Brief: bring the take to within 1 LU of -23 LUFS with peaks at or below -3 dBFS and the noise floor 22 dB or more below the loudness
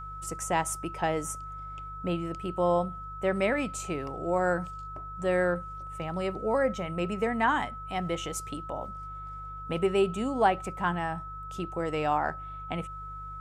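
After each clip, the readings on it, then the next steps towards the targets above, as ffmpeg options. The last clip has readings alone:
hum 50 Hz; harmonics up to 150 Hz; hum level -42 dBFS; steady tone 1300 Hz; tone level -39 dBFS; loudness -30.5 LUFS; peak -10.5 dBFS; loudness target -23.0 LUFS
-> -af "bandreject=f=50:t=h:w=4,bandreject=f=100:t=h:w=4,bandreject=f=150:t=h:w=4"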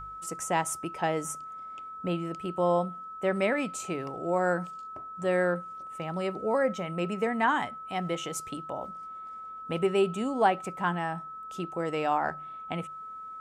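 hum none; steady tone 1300 Hz; tone level -39 dBFS
-> -af "bandreject=f=1.3k:w=30"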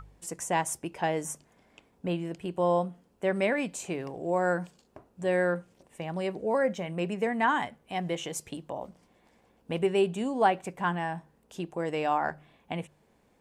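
steady tone none; loudness -30.5 LUFS; peak -11.0 dBFS; loudness target -23.0 LUFS
-> -af "volume=7.5dB"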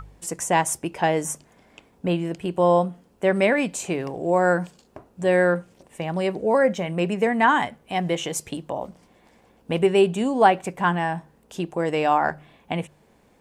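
loudness -23.0 LUFS; peak -3.5 dBFS; noise floor -59 dBFS

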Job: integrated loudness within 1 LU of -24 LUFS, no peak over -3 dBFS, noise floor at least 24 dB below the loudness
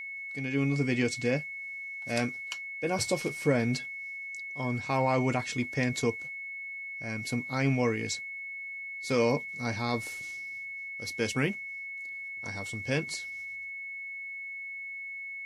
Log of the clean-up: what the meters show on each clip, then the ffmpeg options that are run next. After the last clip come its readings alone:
steady tone 2200 Hz; tone level -37 dBFS; loudness -32.0 LUFS; peak -14.0 dBFS; loudness target -24.0 LUFS
-> -af "bandreject=f=2.2k:w=30"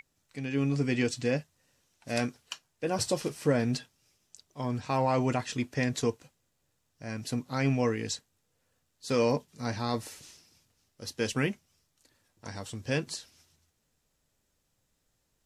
steady tone none; loudness -31.5 LUFS; peak -14.5 dBFS; loudness target -24.0 LUFS
-> -af "volume=7.5dB"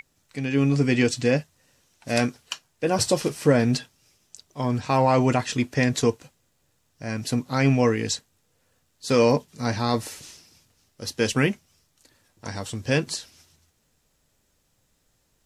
loudness -24.0 LUFS; peak -7.0 dBFS; noise floor -69 dBFS

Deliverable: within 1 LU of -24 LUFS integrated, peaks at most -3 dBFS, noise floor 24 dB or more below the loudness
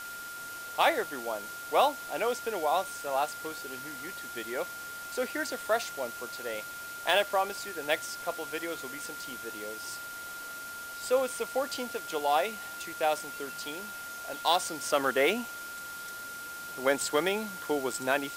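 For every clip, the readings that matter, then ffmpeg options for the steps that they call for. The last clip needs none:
steady tone 1400 Hz; tone level -40 dBFS; noise floor -42 dBFS; noise floor target -56 dBFS; loudness -32.0 LUFS; peak -12.0 dBFS; loudness target -24.0 LUFS
-> -af "bandreject=f=1.4k:w=30"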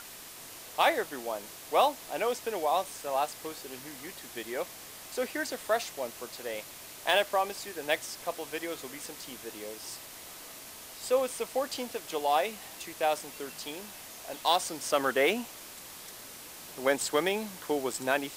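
steady tone none; noise floor -47 dBFS; noise floor target -56 dBFS
-> -af "afftdn=nr=9:nf=-47"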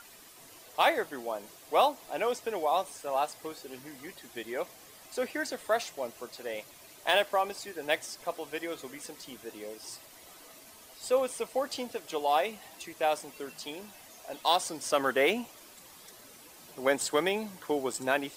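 noise floor -53 dBFS; noise floor target -56 dBFS
-> -af "afftdn=nr=6:nf=-53"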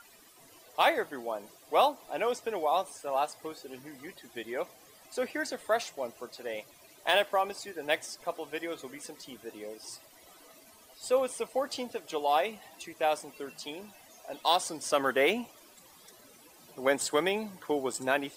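noise floor -57 dBFS; loudness -31.5 LUFS; peak -12.0 dBFS; loudness target -24.0 LUFS
-> -af "volume=7.5dB"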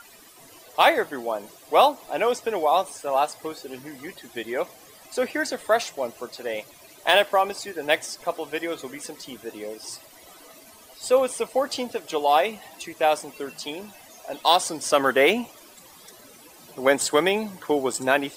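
loudness -24.0 LUFS; peak -4.5 dBFS; noise floor -49 dBFS

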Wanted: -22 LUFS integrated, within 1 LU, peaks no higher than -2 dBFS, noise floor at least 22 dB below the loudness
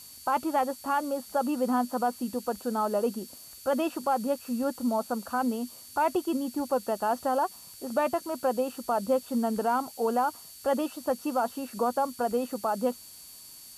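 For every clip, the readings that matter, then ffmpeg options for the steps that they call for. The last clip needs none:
steady tone 4500 Hz; tone level -53 dBFS; noise floor -48 dBFS; noise floor target -52 dBFS; loudness -29.5 LUFS; peak -15.0 dBFS; loudness target -22.0 LUFS
-> -af "bandreject=f=4.5k:w=30"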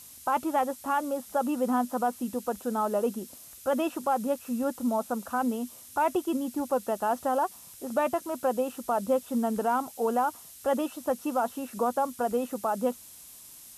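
steady tone none; noise floor -49 dBFS; noise floor target -52 dBFS
-> -af "afftdn=nr=6:nf=-49"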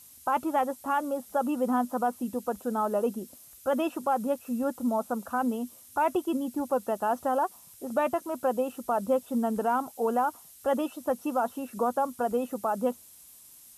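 noise floor -53 dBFS; loudness -29.5 LUFS; peak -15.0 dBFS; loudness target -22.0 LUFS
-> -af "volume=7.5dB"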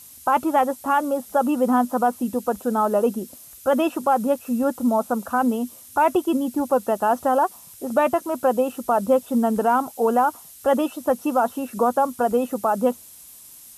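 loudness -22.0 LUFS; peak -7.5 dBFS; noise floor -45 dBFS

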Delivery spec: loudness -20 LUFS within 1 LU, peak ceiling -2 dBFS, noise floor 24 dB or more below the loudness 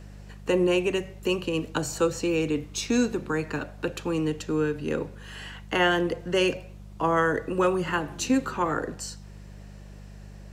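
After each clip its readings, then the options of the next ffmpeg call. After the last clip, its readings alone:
hum 50 Hz; harmonics up to 200 Hz; hum level -41 dBFS; loudness -26.5 LUFS; peak -11.0 dBFS; loudness target -20.0 LUFS
-> -af "bandreject=f=50:t=h:w=4,bandreject=f=100:t=h:w=4,bandreject=f=150:t=h:w=4,bandreject=f=200:t=h:w=4"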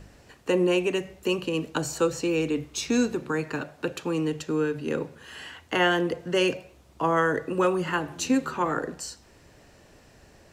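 hum none; loudness -26.5 LUFS; peak -11.0 dBFS; loudness target -20.0 LUFS
-> -af "volume=6.5dB"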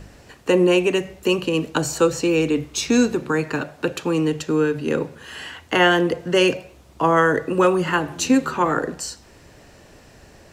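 loudness -20.0 LUFS; peak -4.5 dBFS; noise floor -49 dBFS

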